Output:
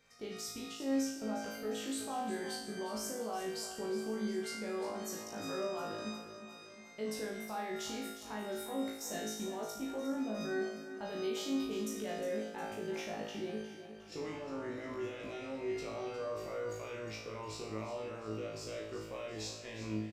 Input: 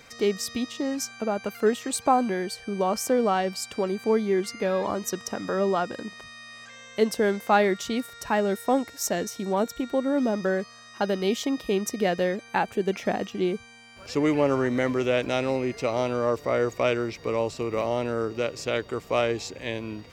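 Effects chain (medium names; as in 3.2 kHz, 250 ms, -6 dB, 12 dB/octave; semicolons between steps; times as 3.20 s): gate -35 dBFS, range -12 dB; in parallel at +3 dB: compressor with a negative ratio -29 dBFS; on the sum: peak limiter -17 dBFS, peak gain reduction 12 dB; feedback comb 54 Hz, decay 0.66 s, harmonics all, mix 100%; on a send: feedback delay 358 ms, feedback 55%, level -11.5 dB; on the sum: resampled via 32 kHz; trim -4 dB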